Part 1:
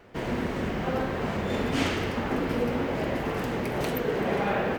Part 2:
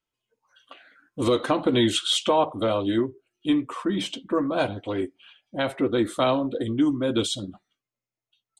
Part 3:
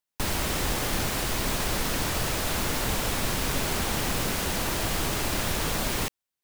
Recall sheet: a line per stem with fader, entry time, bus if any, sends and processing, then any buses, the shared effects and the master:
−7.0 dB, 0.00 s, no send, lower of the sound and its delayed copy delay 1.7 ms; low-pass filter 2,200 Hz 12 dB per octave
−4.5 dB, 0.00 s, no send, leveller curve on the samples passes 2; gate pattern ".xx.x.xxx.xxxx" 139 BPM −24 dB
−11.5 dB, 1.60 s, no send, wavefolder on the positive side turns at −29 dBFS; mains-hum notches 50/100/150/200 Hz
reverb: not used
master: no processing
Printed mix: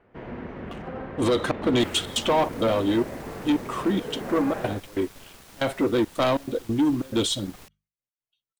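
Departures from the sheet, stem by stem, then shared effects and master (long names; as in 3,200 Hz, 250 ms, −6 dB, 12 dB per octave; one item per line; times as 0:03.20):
stem 1: missing lower of the sound and its delayed copy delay 1.7 ms
stem 3 −11.5 dB → −18.5 dB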